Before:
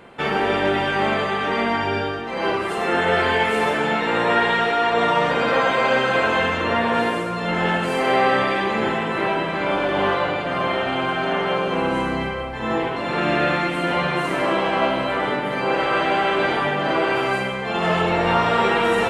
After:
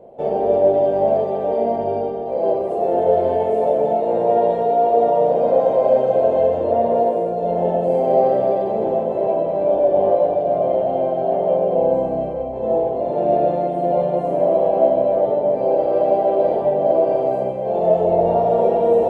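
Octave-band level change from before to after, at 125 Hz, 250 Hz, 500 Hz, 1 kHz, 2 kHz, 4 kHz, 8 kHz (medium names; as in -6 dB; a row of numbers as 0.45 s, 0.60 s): -2.5 dB, -2.0 dB, +7.5 dB, -0.5 dB, under -25 dB, under -20 dB, under -15 dB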